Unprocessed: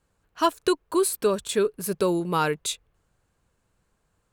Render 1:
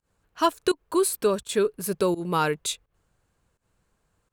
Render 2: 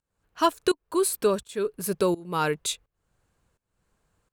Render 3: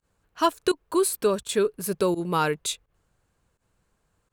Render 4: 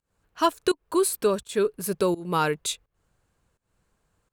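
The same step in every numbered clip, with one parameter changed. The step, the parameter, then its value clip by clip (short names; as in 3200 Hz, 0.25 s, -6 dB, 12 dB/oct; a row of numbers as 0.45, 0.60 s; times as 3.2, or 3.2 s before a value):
pump, release: 128, 470, 80, 244 ms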